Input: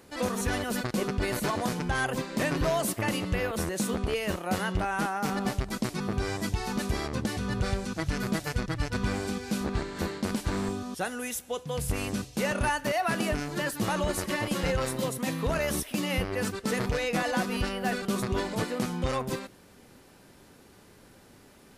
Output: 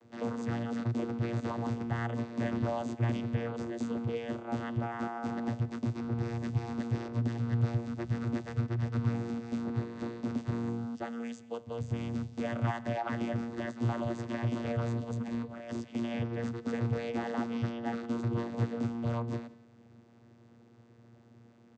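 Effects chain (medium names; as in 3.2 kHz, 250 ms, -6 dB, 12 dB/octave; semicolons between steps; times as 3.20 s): 14.85–15.71 s: compressor with a negative ratio -32 dBFS, ratio -0.5; vocoder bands 16, saw 117 Hz; echo from a far wall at 30 m, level -20 dB; trim -2 dB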